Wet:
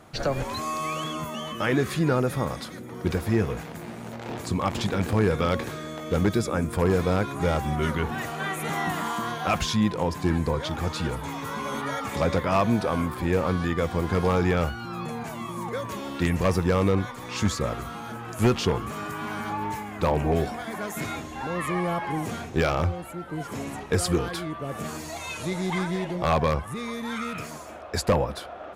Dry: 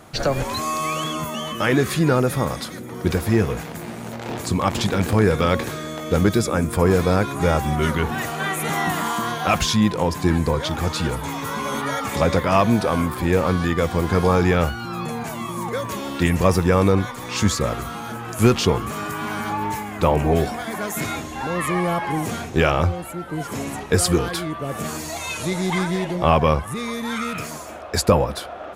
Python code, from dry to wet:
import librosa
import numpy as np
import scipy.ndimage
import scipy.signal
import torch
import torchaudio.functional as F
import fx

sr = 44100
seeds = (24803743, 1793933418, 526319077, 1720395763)

y = fx.high_shelf(x, sr, hz=5400.0, db=-5.0)
y = 10.0 ** (-7.0 / 20.0) * (np.abs((y / 10.0 ** (-7.0 / 20.0) + 3.0) % 4.0 - 2.0) - 1.0)
y = y * librosa.db_to_amplitude(-5.0)